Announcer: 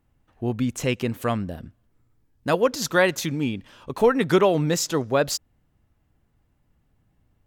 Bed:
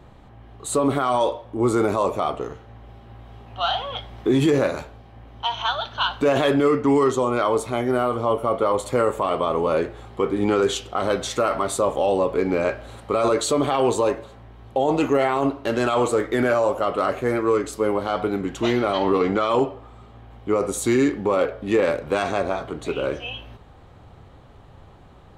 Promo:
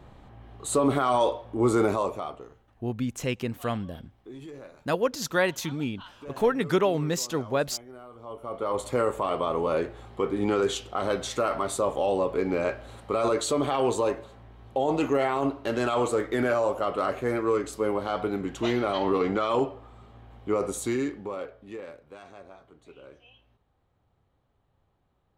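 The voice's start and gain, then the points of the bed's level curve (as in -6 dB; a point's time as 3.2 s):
2.40 s, -5.0 dB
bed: 1.88 s -2.5 dB
2.83 s -24.5 dB
8.1 s -24.5 dB
8.8 s -5 dB
20.67 s -5 dB
22.06 s -24 dB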